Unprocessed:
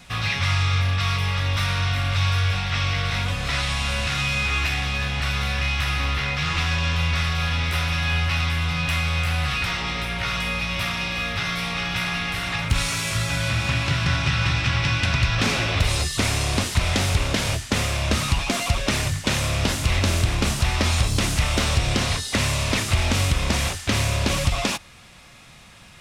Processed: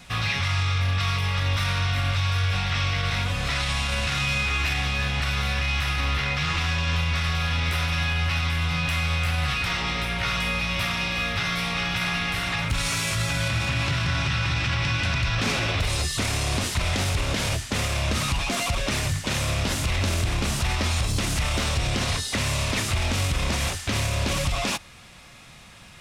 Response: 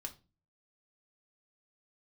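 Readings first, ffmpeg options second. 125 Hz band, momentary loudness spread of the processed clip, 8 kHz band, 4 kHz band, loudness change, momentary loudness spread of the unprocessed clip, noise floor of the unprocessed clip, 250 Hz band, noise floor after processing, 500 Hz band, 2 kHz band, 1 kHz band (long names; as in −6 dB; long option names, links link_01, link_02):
−2.5 dB, 2 LU, −2.0 dB, −2.0 dB, −2.0 dB, 3 LU, −45 dBFS, −3.0 dB, −45 dBFS, −2.5 dB, −1.5 dB, −1.5 dB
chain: -af "alimiter=limit=-16dB:level=0:latency=1:release=28"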